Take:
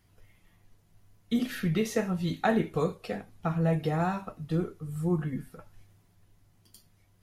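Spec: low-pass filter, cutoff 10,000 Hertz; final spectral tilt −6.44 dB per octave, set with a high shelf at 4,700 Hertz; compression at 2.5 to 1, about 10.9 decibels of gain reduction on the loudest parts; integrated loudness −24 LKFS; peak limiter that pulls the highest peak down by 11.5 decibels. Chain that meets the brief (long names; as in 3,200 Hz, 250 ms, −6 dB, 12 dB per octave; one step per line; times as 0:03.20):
low-pass filter 10,000 Hz
high-shelf EQ 4,700 Hz −6.5 dB
downward compressor 2.5 to 1, threshold −39 dBFS
level +20.5 dB
brickwall limiter −15 dBFS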